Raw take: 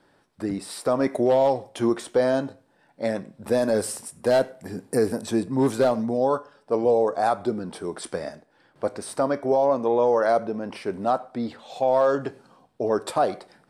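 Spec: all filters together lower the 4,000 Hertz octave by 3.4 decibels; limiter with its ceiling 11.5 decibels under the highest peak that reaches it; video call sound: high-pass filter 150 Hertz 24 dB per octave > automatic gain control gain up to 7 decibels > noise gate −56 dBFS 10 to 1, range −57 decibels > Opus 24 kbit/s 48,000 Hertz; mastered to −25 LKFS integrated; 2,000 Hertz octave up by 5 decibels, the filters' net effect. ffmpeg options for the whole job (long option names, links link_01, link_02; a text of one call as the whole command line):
ffmpeg -i in.wav -af "equalizer=frequency=2000:width_type=o:gain=8,equalizer=frequency=4000:width_type=o:gain=-6.5,alimiter=limit=-21.5dB:level=0:latency=1,highpass=frequency=150:width=0.5412,highpass=frequency=150:width=1.3066,dynaudnorm=maxgain=7dB,agate=range=-57dB:threshold=-56dB:ratio=10,volume=7.5dB" -ar 48000 -c:a libopus -b:a 24k out.opus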